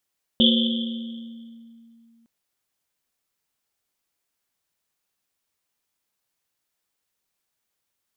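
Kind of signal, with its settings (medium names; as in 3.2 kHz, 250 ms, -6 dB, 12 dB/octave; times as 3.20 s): Risset drum length 1.86 s, pitch 230 Hz, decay 2.84 s, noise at 3.3 kHz, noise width 480 Hz, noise 40%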